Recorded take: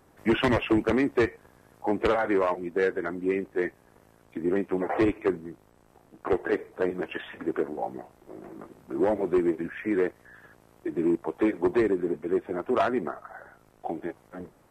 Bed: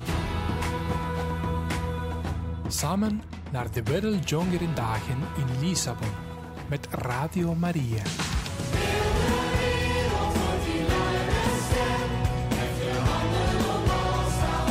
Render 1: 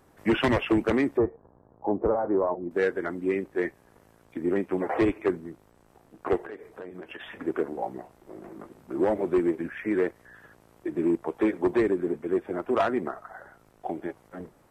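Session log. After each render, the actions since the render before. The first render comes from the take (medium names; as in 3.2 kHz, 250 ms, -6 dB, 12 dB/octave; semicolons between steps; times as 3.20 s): 1.17–2.71 s: low-pass 1 kHz 24 dB/octave; 6.40–7.21 s: compression, threshold -37 dBFS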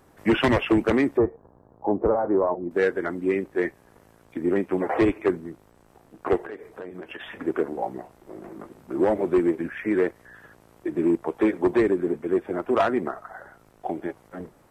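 trim +3 dB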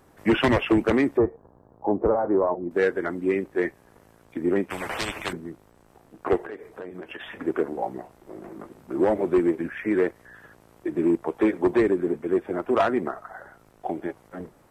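4.70–5.33 s: spectrum-flattening compressor 4:1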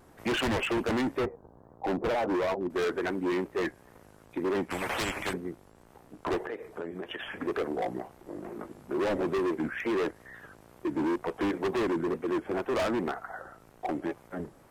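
overload inside the chain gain 26 dB; wow and flutter 130 cents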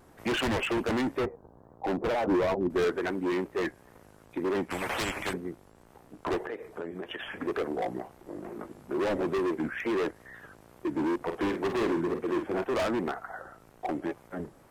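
2.27–2.90 s: bass shelf 310 Hz +8 dB; 11.16–12.64 s: doubling 48 ms -7 dB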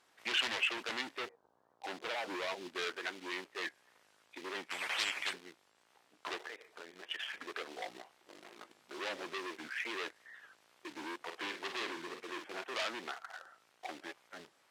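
in parallel at -11 dB: bit crusher 6-bit; on the sum: band-pass filter 3.7 kHz, Q 1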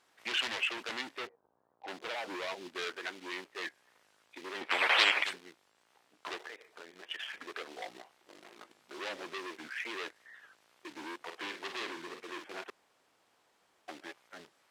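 1.27–1.88 s: tape spacing loss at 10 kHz 31 dB; 4.61–5.24 s: FFT filter 140 Hz 0 dB, 470 Hz +14 dB, 3.9 kHz +9 dB, 6.5 kHz -1 dB; 12.70–13.88 s: room tone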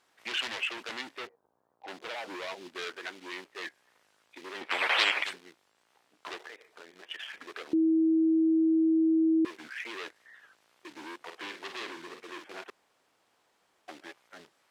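7.73–9.45 s: bleep 322 Hz -21 dBFS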